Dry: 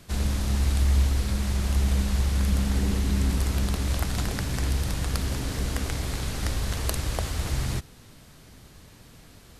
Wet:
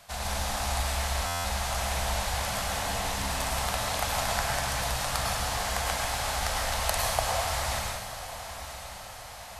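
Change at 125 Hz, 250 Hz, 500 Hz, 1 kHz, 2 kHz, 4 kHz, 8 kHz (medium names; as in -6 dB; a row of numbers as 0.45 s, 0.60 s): -10.0 dB, -11.5 dB, +4.0 dB, +10.0 dB, +5.5 dB, +4.5 dB, +4.5 dB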